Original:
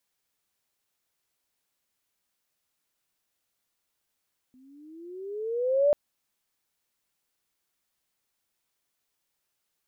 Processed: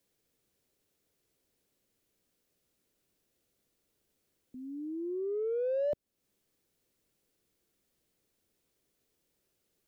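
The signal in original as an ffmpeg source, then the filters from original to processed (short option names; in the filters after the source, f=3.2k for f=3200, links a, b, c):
-f lavfi -i "aevalsrc='pow(10,(-16.5+37*(t/1.39-1))/20)*sin(2*PI*251*1.39/(15*log(2)/12)*(exp(15*log(2)/12*t/1.39)-1))':d=1.39:s=44100"
-filter_complex "[0:a]acrossover=split=150|600[a][b][c];[b]asoftclip=type=tanh:threshold=-37.5dB[d];[a][d][c]amix=inputs=3:normalize=0,lowshelf=f=630:t=q:w=1.5:g=10,acompressor=threshold=-39dB:ratio=2"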